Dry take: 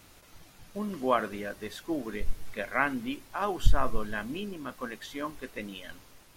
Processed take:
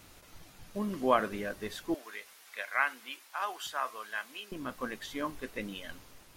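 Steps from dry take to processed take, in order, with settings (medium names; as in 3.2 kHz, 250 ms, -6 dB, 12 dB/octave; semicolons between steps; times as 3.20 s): 1.94–4.52 s: high-pass 990 Hz 12 dB/octave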